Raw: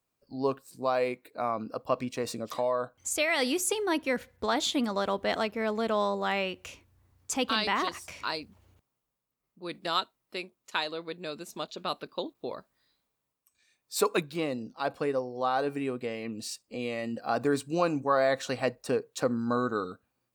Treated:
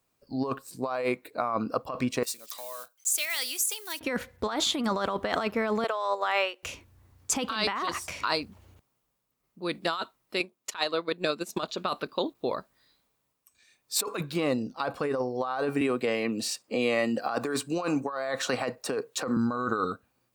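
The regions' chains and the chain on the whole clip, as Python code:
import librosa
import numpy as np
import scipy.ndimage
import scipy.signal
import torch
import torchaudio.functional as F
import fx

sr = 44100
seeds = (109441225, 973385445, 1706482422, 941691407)

y = fx.chain(x, sr, fx.block_float(bits=5),
    fx.differentiator(), at=(2.23, 4.01))
y = fx.chain(y, sr, fx.highpass(hz=450.0, slope=24),
    fx.upward_expand(threshold_db=-41.0, expansion=1.5), at=(5.84, 6.63))
y = fx.chain(y, sr, fx.highpass(hz=140.0, slope=12),
    fx.transient(attack_db=10, sustain_db=-6), at=(10.4, 11.63))
y = fx.chain(y, sr, fx.highpass(hz=250.0, slope=6),
    fx.band_squash(depth_pct=40), at=(15.81, 19.37))
y = fx.dynamic_eq(y, sr, hz=1200.0, q=1.7, threshold_db=-44.0, ratio=4.0, max_db=6)
y = fx.over_compress(y, sr, threshold_db=-31.0, ratio=-1.0)
y = F.gain(torch.from_numpy(y), 3.0).numpy()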